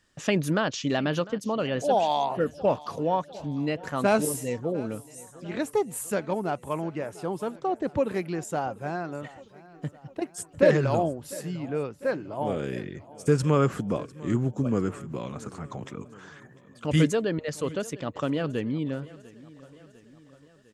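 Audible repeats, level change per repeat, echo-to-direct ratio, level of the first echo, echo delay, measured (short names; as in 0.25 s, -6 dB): 3, -5.0 dB, -18.5 dB, -20.0 dB, 0.7 s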